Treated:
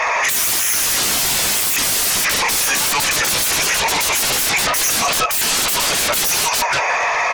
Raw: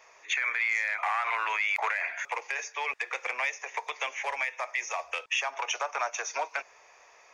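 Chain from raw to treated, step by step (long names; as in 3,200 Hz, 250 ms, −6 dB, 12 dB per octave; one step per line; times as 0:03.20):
mid-hump overdrive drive 18 dB, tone 2,300 Hz, clips at −17 dBFS
in parallel at +0.5 dB: downward compressor, threshold −38 dBFS, peak gain reduction 14 dB
on the sum: repeating echo 176 ms, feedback 17%, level −9.5 dB
sine wavefolder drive 19 dB, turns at −16 dBFS
high-shelf EQ 4,600 Hz +4 dB
every bin expanded away from the loudest bin 1.5 to 1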